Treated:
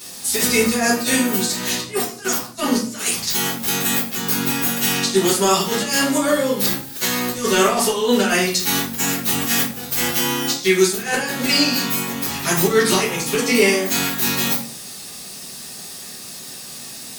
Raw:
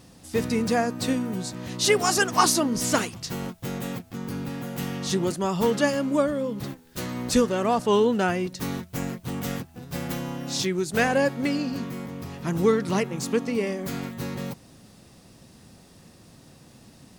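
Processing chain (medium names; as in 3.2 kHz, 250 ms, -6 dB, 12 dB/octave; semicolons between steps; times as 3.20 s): tilt EQ +4.5 dB/octave; compressor with a negative ratio -27 dBFS, ratio -0.5; simulated room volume 46 m³, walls mixed, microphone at 1.7 m; trim -1 dB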